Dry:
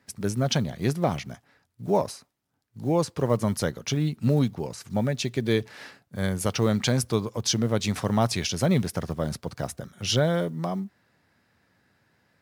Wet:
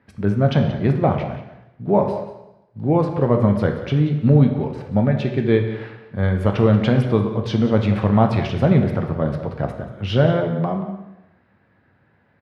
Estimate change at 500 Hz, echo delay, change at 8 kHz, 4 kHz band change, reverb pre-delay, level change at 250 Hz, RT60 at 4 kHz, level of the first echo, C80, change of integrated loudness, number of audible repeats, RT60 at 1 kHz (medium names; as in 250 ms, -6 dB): +7.0 dB, 182 ms, under -20 dB, -4.0 dB, 6 ms, +8.0 dB, 0.85 s, -14.5 dB, 9.0 dB, +7.0 dB, 1, 0.90 s